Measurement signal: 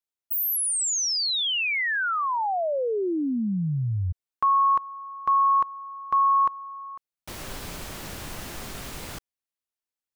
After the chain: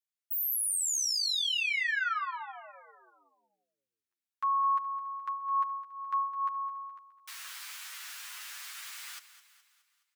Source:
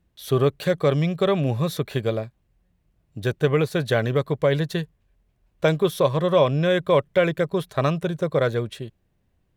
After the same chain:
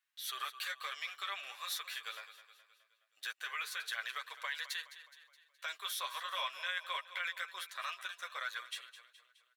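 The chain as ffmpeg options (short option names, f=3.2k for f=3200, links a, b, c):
-af "highpass=f=1.3k:w=0.5412,highpass=f=1.3k:w=1.3066,alimiter=level_in=0.5dB:limit=-24dB:level=0:latency=1:release=38,volume=-0.5dB,aecho=1:1:210|420|630|840|1050:0.2|0.102|0.0519|0.0265|0.0135,flanger=delay=8.1:depth=3.2:regen=4:speed=0.21:shape=sinusoidal"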